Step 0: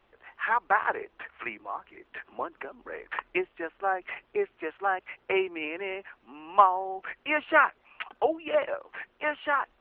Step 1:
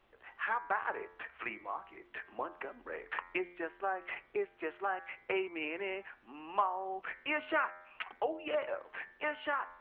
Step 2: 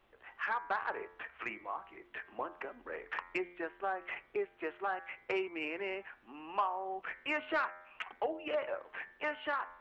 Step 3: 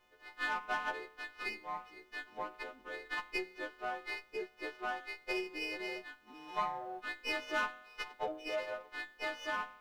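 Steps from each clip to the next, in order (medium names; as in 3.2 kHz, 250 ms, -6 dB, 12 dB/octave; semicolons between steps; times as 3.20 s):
de-hum 88.27 Hz, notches 27; compression 2:1, threshold -31 dBFS, peak gain reduction 10 dB; trim -3 dB
saturation -22 dBFS, distortion -21 dB
partials quantised in pitch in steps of 3 st; sliding maximum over 5 samples; trim -3.5 dB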